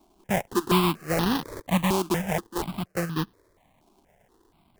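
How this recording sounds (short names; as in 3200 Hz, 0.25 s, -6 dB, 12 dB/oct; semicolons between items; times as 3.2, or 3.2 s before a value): aliases and images of a low sample rate 1400 Hz, jitter 20%; notches that jump at a steady rate 4.2 Hz 500–2200 Hz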